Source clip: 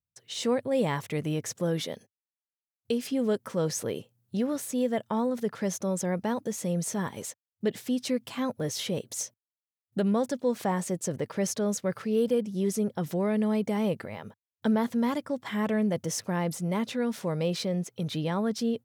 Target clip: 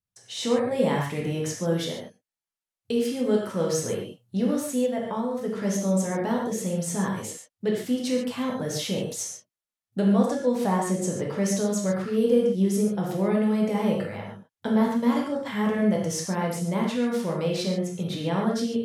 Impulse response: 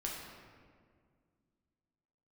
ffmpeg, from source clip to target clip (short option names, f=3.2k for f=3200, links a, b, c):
-filter_complex "[1:a]atrim=start_sample=2205,atrim=end_sample=3969,asetrate=25578,aresample=44100[a];[0:a][a]afir=irnorm=-1:irlink=0,asettb=1/sr,asplit=3[b][c][d];[b]atrim=end=4.864[e];[c]atrim=start=4.86:end=5.65,asetpts=PTS-STARTPTS,afade=t=in:d=0.004:c=qsin,afade=t=out:st=0.786:d=0.004:c=qsin,acompressor=threshold=-25dB:ratio=4[f];[d]atrim=start=5.646[g];[e][f]acrossfade=d=0.004:c1=hsin:c2=qsin[h];[h][g]acrossfade=d=0.004:c1=qsin:c2=hsin"